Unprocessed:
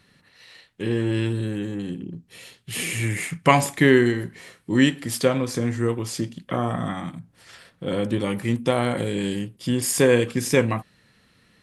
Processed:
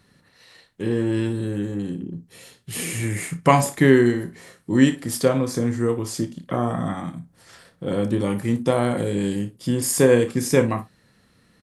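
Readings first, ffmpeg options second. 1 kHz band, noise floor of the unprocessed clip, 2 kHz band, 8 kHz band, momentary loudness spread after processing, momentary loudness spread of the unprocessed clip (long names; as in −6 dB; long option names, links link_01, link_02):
+1.0 dB, −61 dBFS, −2.5 dB, +1.0 dB, 14 LU, 15 LU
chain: -filter_complex "[0:a]equalizer=frequency=2700:width=1:gain=-7,asplit=2[link_01][link_02];[link_02]aecho=0:1:30|58:0.251|0.168[link_03];[link_01][link_03]amix=inputs=2:normalize=0,volume=1.5dB"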